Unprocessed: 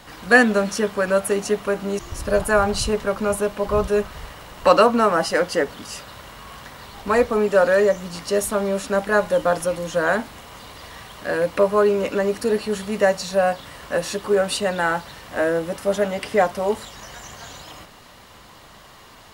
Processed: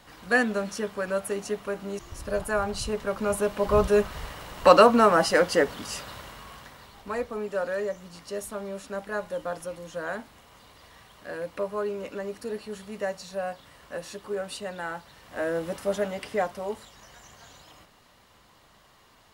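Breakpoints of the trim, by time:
2.78 s -9 dB
3.75 s -1 dB
6.11 s -1 dB
7.15 s -13 dB
15.10 s -13 dB
15.69 s -5 dB
16.90 s -12 dB

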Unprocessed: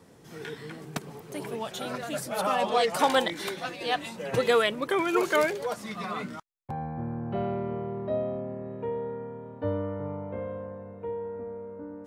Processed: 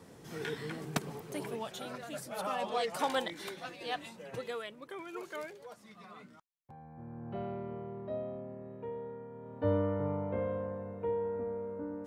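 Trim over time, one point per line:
1.07 s +0.5 dB
1.95 s -9 dB
4.06 s -9 dB
4.57 s -18 dB
6.82 s -18 dB
7.29 s -9 dB
9.29 s -9 dB
9.72 s +0.5 dB

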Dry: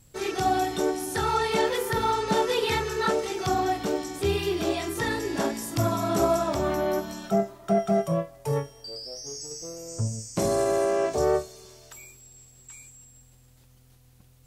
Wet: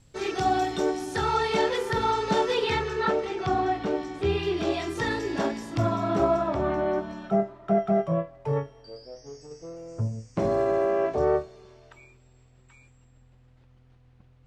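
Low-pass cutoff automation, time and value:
2.40 s 5.8 kHz
3.16 s 3 kHz
4.19 s 3 kHz
4.99 s 5.9 kHz
6.50 s 2.3 kHz

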